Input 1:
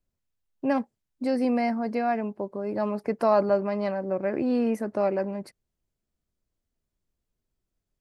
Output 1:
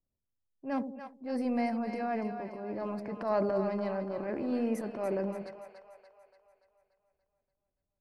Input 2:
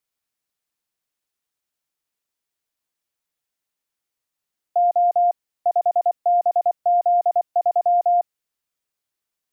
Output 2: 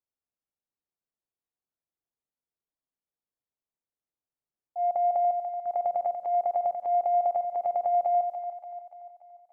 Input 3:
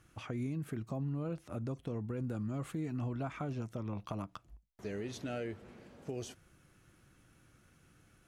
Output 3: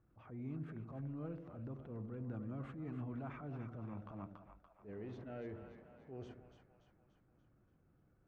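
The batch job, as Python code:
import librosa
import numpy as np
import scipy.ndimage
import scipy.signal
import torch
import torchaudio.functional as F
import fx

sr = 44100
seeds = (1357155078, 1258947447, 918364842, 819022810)

y = fx.transient(x, sr, attack_db=-10, sustain_db=6)
y = fx.env_lowpass(y, sr, base_hz=870.0, full_db=-23.0)
y = fx.echo_split(y, sr, split_hz=600.0, low_ms=87, high_ms=289, feedback_pct=52, wet_db=-8)
y = y * librosa.db_to_amplitude(-7.0)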